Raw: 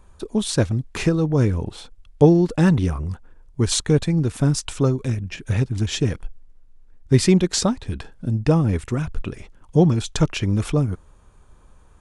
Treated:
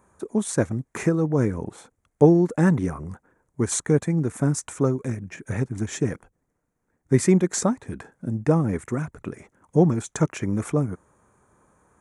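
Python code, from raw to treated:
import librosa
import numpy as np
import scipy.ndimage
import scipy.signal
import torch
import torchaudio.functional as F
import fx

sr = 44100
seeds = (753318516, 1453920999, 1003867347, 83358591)

y = scipy.signal.sosfilt(scipy.signal.butter(2, 150.0, 'highpass', fs=sr, output='sos'), x)
y = fx.band_shelf(y, sr, hz=3700.0, db=-13.5, octaves=1.2)
y = y * 10.0 ** (-1.0 / 20.0)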